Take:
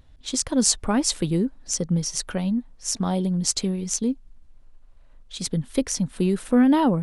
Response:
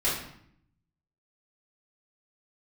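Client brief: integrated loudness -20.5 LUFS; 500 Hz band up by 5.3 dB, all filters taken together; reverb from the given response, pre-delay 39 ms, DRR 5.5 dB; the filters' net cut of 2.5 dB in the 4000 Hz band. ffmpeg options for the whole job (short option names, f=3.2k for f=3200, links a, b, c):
-filter_complex "[0:a]equalizer=f=500:t=o:g=6.5,equalizer=f=4k:t=o:g=-3.5,asplit=2[a][b];[1:a]atrim=start_sample=2205,adelay=39[c];[b][c]afir=irnorm=-1:irlink=0,volume=-16dB[d];[a][d]amix=inputs=2:normalize=0,volume=0.5dB"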